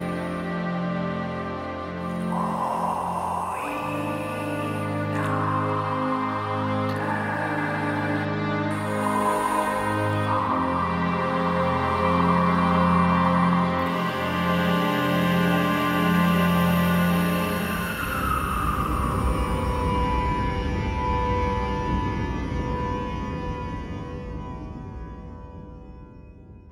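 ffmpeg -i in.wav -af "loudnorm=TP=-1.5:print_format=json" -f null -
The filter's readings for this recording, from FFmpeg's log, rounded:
"input_i" : "-24.6",
"input_tp" : "-8.0",
"input_lra" : "12.6",
"input_thresh" : "-35.2",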